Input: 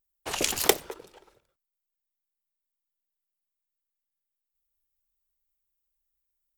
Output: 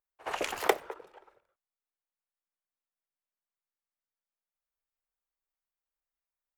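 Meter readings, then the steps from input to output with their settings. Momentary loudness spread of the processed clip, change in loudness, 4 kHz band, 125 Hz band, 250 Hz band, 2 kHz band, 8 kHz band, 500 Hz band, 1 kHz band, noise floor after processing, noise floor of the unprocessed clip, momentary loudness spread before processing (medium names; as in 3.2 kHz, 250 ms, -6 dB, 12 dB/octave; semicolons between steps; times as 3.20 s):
17 LU, -6.0 dB, -10.5 dB, under -10 dB, -6.5 dB, -2.0 dB, -15.5 dB, -2.5 dB, +1.5 dB, under -85 dBFS, under -85 dBFS, 21 LU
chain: three-band isolator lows -15 dB, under 450 Hz, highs -18 dB, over 2.2 kHz; on a send: reverse echo 68 ms -18 dB; on the sum: trim +2 dB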